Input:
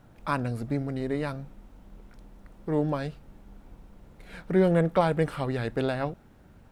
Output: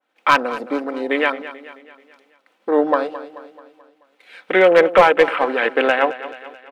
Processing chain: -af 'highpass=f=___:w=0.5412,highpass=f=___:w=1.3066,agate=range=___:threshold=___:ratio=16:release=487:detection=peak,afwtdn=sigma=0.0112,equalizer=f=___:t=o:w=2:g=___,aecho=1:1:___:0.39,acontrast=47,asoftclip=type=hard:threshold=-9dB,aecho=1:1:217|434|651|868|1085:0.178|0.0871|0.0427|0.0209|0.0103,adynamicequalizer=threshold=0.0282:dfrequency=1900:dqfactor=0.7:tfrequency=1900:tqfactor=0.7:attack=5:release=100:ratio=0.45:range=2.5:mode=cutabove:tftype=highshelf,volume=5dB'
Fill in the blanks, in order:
340, 340, -11dB, -59dB, 2700, 14, 3.9